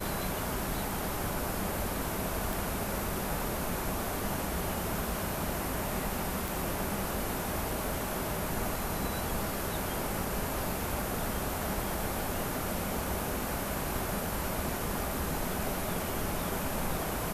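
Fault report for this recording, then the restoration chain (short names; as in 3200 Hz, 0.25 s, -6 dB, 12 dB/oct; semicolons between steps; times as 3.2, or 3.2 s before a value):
2.53 pop
6.48 pop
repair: de-click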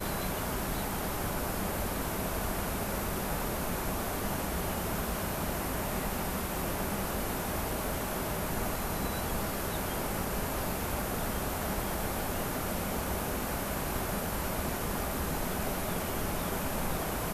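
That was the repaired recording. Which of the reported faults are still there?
none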